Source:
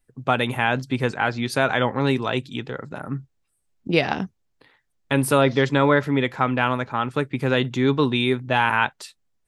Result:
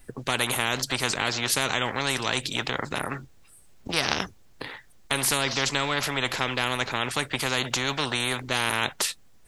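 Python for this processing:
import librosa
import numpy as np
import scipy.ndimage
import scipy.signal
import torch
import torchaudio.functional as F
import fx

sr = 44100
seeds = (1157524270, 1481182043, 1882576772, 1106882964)

y = fx.spectral_comp(x, sr, ratio=4.0)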